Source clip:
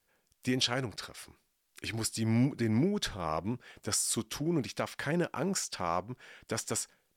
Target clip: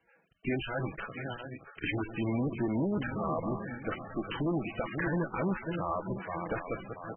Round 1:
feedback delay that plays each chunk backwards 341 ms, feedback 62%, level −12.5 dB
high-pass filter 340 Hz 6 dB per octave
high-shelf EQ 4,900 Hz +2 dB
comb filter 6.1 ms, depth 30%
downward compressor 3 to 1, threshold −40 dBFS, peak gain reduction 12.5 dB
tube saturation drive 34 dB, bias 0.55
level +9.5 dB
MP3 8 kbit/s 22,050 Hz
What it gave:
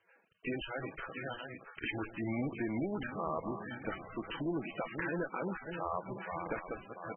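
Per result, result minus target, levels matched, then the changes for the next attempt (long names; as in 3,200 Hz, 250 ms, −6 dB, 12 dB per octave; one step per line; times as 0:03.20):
downward compressor: peak gain reduction +5.5 dB; 125 Hz band −3.5 dB
change: downward compressor 3 to 1, threshold −32 dBFS, peak gain reduction 7.5 dB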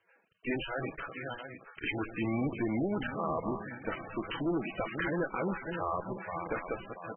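125 Hz band −3.5 dB
change: high-pass filter 87 Hz 6 dB per octave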